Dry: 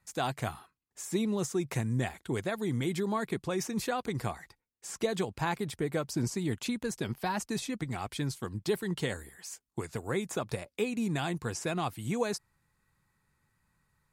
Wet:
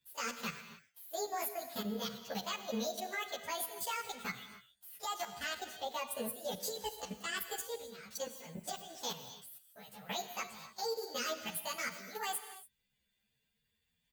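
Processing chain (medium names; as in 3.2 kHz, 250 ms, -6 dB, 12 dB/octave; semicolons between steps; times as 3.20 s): frequency-domain pitch shifter +10.5 st; amplifier tone stack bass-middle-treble 10-0-10; small resonant body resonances 210/460 Hz, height 13 dB, ringing for 25 ms; level held to a coarse grid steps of 15 dB; gated-style reverb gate 310 ms flat, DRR 9 dB; endless flanger 10.8 ms +0.37 Hz; trim +10.5 dB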